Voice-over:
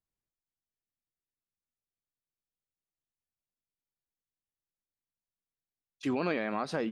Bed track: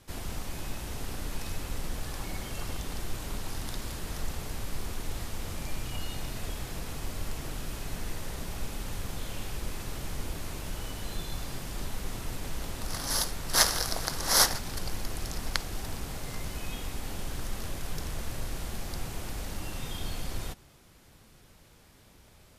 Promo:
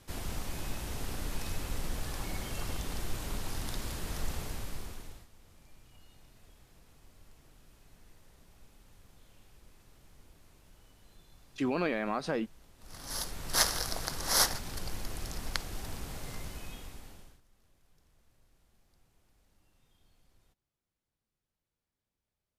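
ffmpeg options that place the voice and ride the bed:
-filter_complex "[0:a]adelay=5550,volume=0dB[a];[1:a]volume=18dB,afade=t=out:st=4.38:d=0.89:silence=0.0794328,afade=t=in:st=12.78:d=0.67:silence=0.112202,afade=t=out:st=16.29:d=1.12:silence=0.0354813[b];[a][b]amix=inputs=2:normalize=0"

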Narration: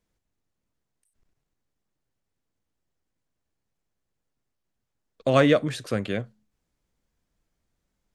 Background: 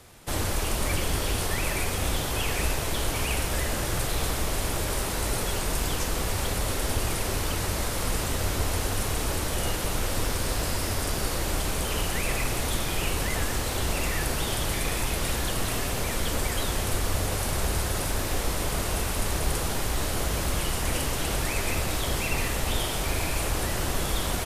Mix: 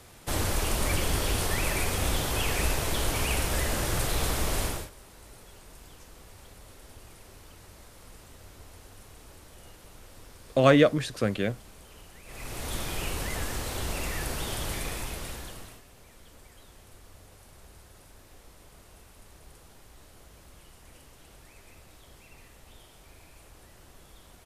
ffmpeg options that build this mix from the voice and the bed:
-filter_complex "[0:a]adelay=5300,volume=0dB[a];[1:a]volume=17dB,afade=t=out:st=4.62:d=0.28:silence=0.0794328,afade=t=in:st=12.25:d=0.54:silence=0.133352,afade=t=out:st=14.73:d=1.09:silence=0.0944061[b];[a][b]amix=inputs=2:normalize=0"

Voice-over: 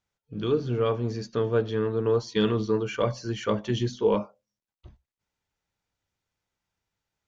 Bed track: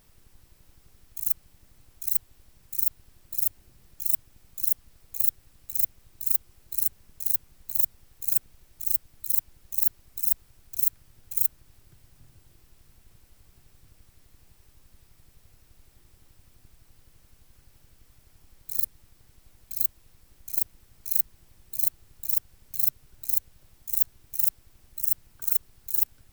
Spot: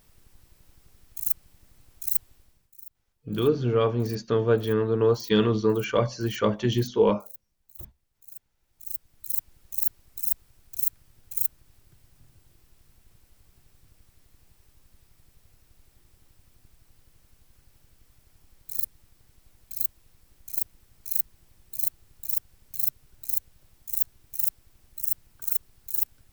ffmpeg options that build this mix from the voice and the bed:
-filter_complex "[0:a]adelay=2950,volume=2.5dB[a];[1:a]volume=18.5dB,afade=t=out:st=2.29:d=0.43:silence=0.0944061,afade=t=in:st=8.56:d=0.96:silence=0.11885[b];[a][b]amix=inputs=2:normalize=0"

